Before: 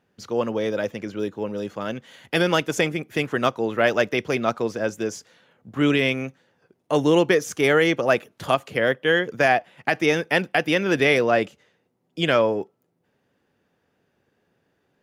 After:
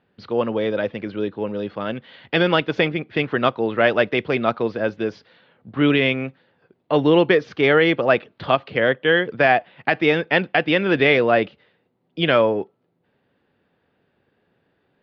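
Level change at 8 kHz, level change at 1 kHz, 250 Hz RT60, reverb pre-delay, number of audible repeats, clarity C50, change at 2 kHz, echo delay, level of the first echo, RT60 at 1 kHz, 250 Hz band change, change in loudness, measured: under -20 dB, +2.5 dB, none, none, none, none, +2.5 dB, none, none, none, +2.5 dB, +2.5 dB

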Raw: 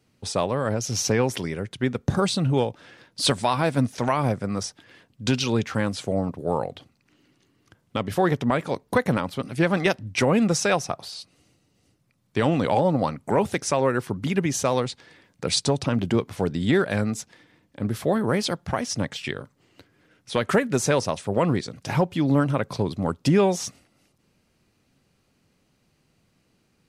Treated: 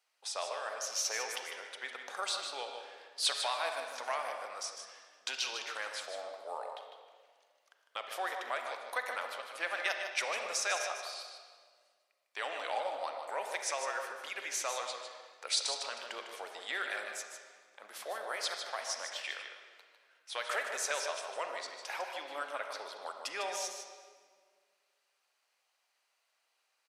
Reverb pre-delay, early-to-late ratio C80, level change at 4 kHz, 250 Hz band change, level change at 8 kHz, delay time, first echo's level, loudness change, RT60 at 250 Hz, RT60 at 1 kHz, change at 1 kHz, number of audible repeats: 35 ms, 4.5 dB, -6.0 dB, -37.0 dB, -6.5 dB, 0.152 s, -8.0 dB, -12.5 dB, 2.2 s, 1.6 s, -10.5 dB, 1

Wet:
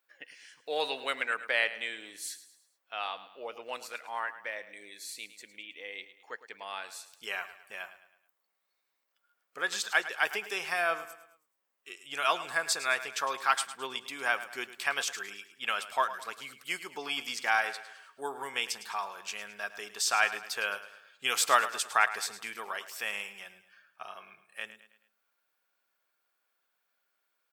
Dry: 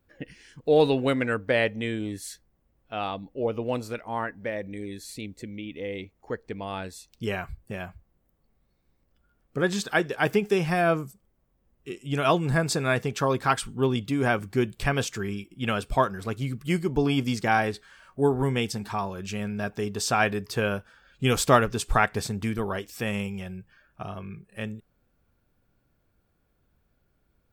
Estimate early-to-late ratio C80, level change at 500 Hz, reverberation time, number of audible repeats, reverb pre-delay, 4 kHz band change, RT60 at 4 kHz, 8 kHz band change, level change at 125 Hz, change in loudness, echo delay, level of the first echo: none, -13.0 dB, none, 3, none, 0.0 dB, none, 0.0 dB, under -35 dB, -5.5 dB, 0.107 s, -14.0 dB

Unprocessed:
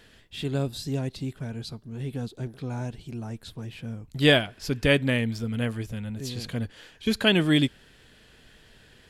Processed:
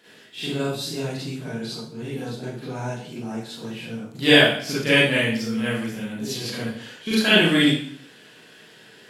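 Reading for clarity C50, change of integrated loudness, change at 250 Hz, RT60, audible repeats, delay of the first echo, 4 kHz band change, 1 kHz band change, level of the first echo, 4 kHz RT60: -1.5 dB, +5.5 dB, +4.0 dB, 0.55 s, none, none, +7.0 dB, +6.0 dB, none, 0.55 s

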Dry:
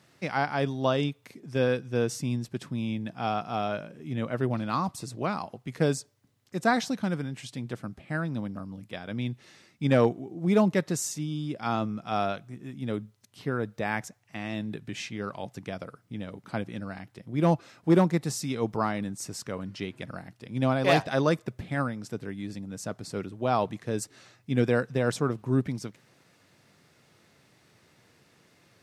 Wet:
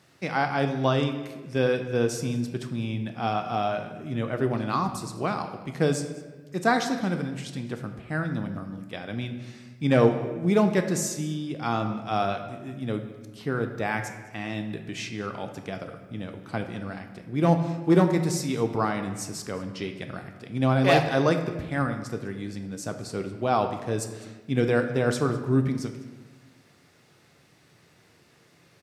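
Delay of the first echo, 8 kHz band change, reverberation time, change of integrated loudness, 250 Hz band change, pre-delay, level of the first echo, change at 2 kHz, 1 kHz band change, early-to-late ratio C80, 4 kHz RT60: 0.204 s, +2.0 dB, 1.3 s, +2.5 dB, +2.0 dB, 3 ms, -21.0 dB, +2.5 dB, +3.0 dB, 10.0 dB, 0.90 s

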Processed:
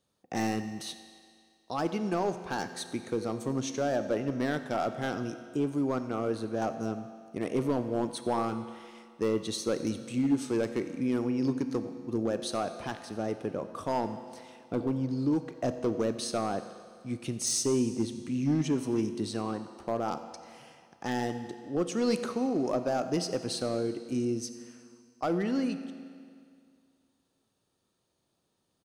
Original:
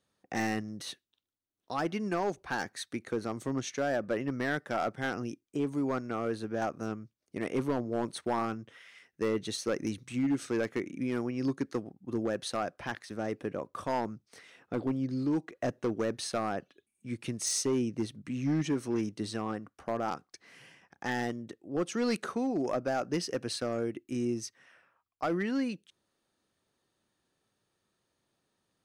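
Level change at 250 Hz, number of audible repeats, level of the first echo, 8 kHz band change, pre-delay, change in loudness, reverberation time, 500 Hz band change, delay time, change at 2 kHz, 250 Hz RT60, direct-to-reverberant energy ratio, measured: +2.5 dB, 1, -20.0 dB, +2.0 dB, 16 ms, +2.0 dB, 2.2 s, +2.5 dB, 89 ms, -3.5 dB, 2.2 s, 9.0 dB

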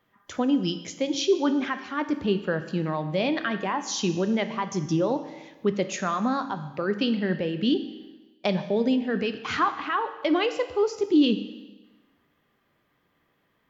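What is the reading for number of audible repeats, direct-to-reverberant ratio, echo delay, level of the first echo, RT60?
none, 9.0 dB, none, none, 1.2 s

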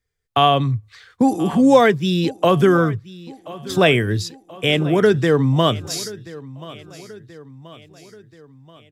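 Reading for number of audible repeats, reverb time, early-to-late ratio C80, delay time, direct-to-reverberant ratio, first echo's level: 3, none, none, 1.031 s, none, -19.0 dB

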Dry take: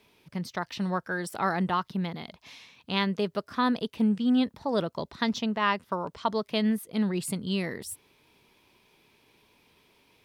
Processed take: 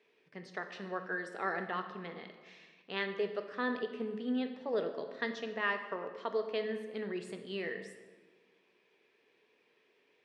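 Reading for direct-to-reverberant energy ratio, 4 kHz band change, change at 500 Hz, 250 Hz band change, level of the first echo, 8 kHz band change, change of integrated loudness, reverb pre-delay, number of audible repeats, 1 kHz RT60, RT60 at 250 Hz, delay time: 6.0 dB, -11.0 dB, -3.5 dB, -13.0 dB, none, under -15 dB, -8.5 dB, 3 ms, none, 1.3 s, 1.7 s, none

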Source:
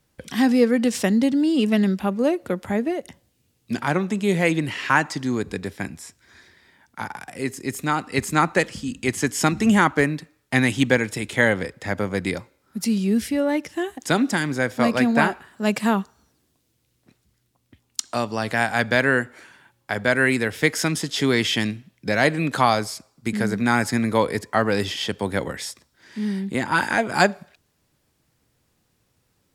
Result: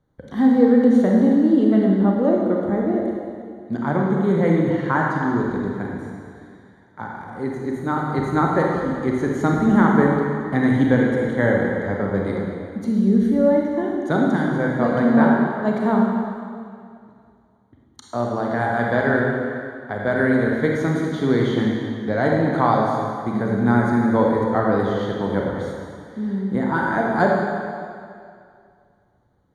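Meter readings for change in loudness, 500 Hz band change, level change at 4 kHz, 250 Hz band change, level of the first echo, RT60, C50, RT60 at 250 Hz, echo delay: +2.5 dB, +4.0 dB, -12.0 dB, +4.5 dB, none, 2.3 s, -0.5 dB, 2.1 s, none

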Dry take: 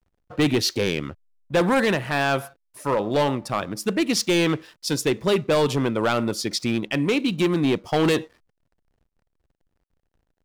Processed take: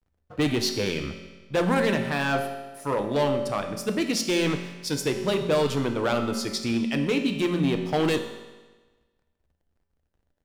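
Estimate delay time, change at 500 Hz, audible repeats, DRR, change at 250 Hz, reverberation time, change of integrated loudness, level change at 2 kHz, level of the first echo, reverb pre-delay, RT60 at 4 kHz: none, -2.5 dB, none, 5.0 dB, -2.5 dB, 1.3 s, -3.0 dB, -3.5 dB, none, 5 ms, 1.2 s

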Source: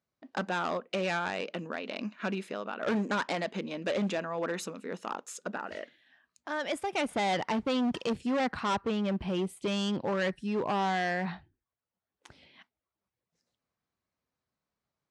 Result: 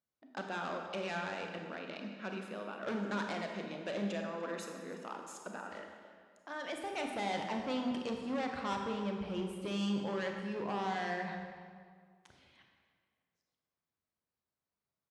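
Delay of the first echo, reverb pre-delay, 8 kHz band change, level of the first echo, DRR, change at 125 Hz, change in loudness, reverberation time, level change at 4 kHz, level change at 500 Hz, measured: 0.298 s, 27 ms, -7.0 dB, -19.0 dB, 2.5 dB, -6.0 dB, -6.5 dB, 1.9 s, -7.0 dB, -6.5 dB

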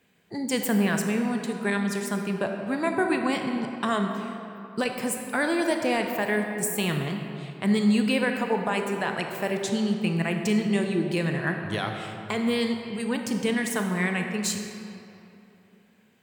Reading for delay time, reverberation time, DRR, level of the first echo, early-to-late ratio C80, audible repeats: none, 3.0 s, 3.5 dB, none, 5.5 dB, none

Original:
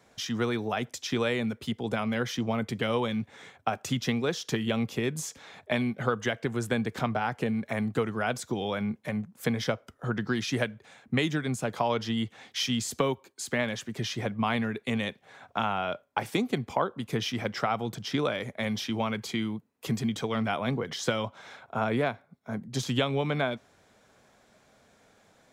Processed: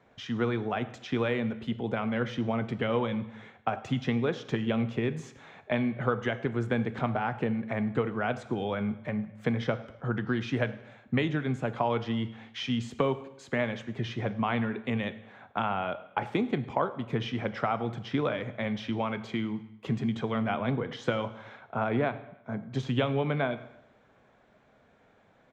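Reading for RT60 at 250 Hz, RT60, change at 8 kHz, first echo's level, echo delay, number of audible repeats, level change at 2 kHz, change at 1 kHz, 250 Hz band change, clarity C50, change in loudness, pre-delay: 0.85 s, 0.80 s, under -15 dB, -23.0 dB, 0.103 s, 3, -2.0 dB, -0.5 dB, 0.0 dB, 14.5 dB, -0.5 dB, 5 ms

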